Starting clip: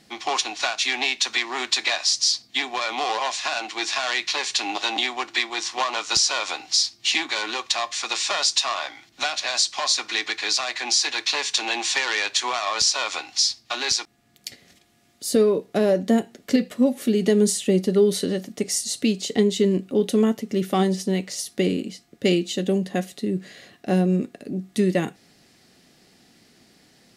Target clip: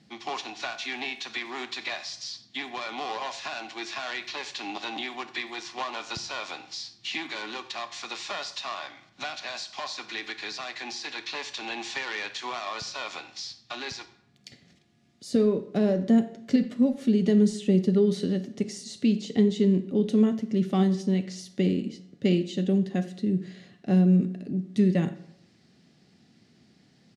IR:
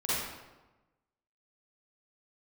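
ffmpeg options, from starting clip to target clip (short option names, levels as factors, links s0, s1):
-filter_complex "[0:a]highpass=110,lowpass=5300,asplit=2[s0][s1];[s1]adelay=90,highpass=300,lowpass=3400,asoftclip=type=hard:threshold=0.178,volume=0.0891[s2];[s0][s2]amix=inputs=2:normalize=0,acrossover=split=3100[s3][s4];[s4]acompressor=threshold=0.0282:ratio=4:attack=1:release=60[s5];[s3][s5]amix=inputs=2:normalize=0,bass=f=250:g=13,treble=f=4000:g=3,asplit=2[s6][s7];[1:a]atrim=start_sample=2205,asetrate=66150,aresample=44100,adelay=5[s8];[s7][s8]afir=irnorm=-1:irlink=0,volume=0.126[s9];[s6][s9]amix=inputs=2:normalize=0,volume=0.376"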